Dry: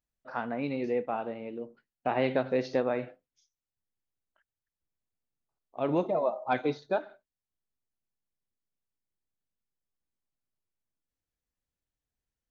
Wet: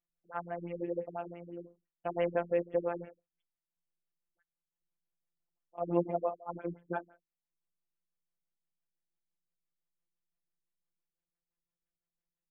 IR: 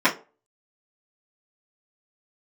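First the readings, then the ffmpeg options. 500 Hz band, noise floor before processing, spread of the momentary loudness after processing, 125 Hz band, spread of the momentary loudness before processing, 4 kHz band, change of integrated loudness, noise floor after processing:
-4.5 dB, under -85 dBFS, 14 LU, -3.5 dB, 12 LU, under -10 dB, -5.0 dB, under -85 dBFS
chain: -af "afftfilt=real='hypot(re,im)*cos(PI*b)':imag='0':win_size=1024:overlap=0.75,afftfilt=real='re*lt(b*sr/1024,320*pow(3500/320,0.5+0.5*sin(2*PI*5.9*pts/sr)))':imag='im*lt(b*sr/1024,320*pow(3500/320,0.5+0.5*sin(2*PI*5.9*pts/sr)))':win_size=1024:overlap=0.75"

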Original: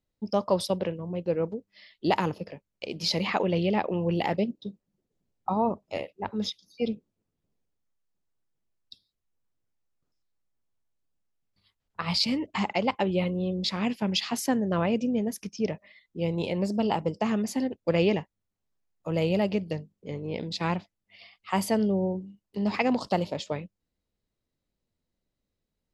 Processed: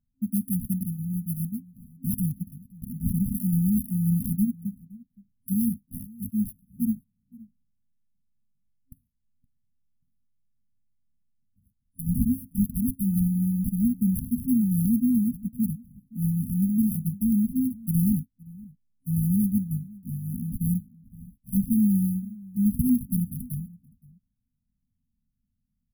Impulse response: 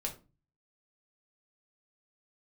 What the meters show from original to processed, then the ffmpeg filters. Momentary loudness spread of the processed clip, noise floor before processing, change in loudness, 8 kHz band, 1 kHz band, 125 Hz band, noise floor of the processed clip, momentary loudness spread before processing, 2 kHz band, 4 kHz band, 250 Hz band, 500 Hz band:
13 LU, -84 dBFS, +2.0 dB, +2.0 dB, under -40 dB, +6.5 dB, -78 dBFS, 11 LU, under -40 dB, under -40 dB, +5.5 dB, under -35 dB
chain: -filter_complex "[0:a]acrusher=samples=20:mix=1:aa=0.000001,afftfilt=real='re*(1-between(b*sr/4096,260,9800))':imag='im*(1-between(b*sr/4096,260,9800))':win_size=4096:overlap=0.75,asplit=2[a][b];[b]adelay=519,volume=-21dB,highshelf=f=4k:g=-11.7[c];[a][c]amix=inputs=2:normalize=0,volume=6dB"

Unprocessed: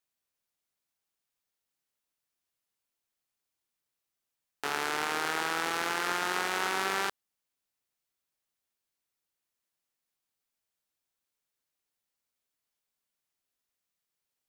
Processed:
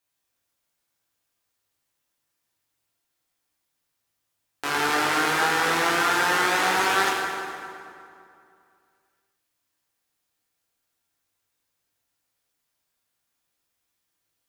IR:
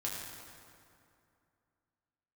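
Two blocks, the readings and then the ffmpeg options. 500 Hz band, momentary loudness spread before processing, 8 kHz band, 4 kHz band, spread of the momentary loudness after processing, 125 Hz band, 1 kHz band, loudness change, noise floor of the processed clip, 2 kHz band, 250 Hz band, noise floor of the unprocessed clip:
+9.0 dB, 4 LU, +8.0 dB, +8.0 dB, 13 LU, +11.0 dB, +9.5 dB, +8.5 dB, -79 dBFS, +9.5 dB, +10.0 dB, under -85 dBFS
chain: -filter_complex "[1:a]atrim=start_sample=2205[a];[0:a][a]afir=irnorm=-1:irlink=0,volume=6.5dB"

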